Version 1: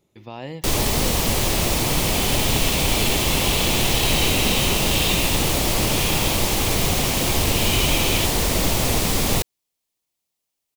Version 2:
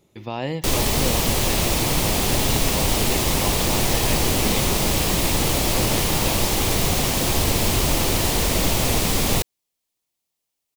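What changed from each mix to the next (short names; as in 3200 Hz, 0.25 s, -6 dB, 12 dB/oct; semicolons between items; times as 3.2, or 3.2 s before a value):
speech +6.5 dB; second sound: add resonant high shelf 1800 Hz -11.5 dB, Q 3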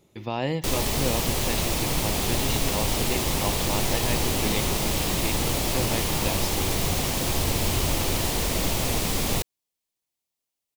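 first sound -5.0 dB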